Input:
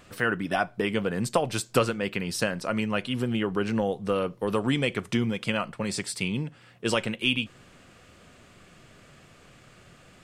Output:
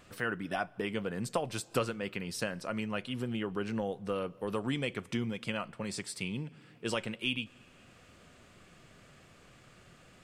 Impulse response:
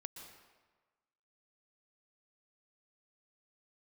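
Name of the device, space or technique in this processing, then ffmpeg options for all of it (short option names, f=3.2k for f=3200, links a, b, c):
ducked reverb: -filter_complex "[0:a]asplit=3[a][b][c];[1:a]atrim=start_sample=2205[d];[b][d]afir=irnorm=-1:irlink=0[e];[c]apad=whole_len=451399[f];[e][f]sidechaincompress=threshold=-41dB:ratio=10:attack=11:release=390,volume=0dB[g];[a][g]amix=inputs=2:normalize=0,volume=-8.5dB"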